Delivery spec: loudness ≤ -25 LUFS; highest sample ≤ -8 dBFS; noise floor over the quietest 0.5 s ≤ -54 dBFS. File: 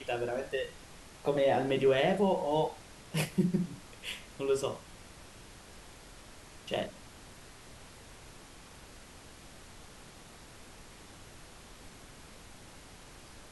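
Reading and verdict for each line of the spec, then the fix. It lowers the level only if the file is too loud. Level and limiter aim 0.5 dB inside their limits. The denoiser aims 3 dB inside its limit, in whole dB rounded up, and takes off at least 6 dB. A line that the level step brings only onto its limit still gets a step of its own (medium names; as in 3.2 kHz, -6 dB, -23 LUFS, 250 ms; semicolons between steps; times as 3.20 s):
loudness -32.0 LUFS: pass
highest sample -15.5 dBFS: pass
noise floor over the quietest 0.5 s -52 dBFS: fail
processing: noise reduction 6 dB, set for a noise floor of -52 dBFS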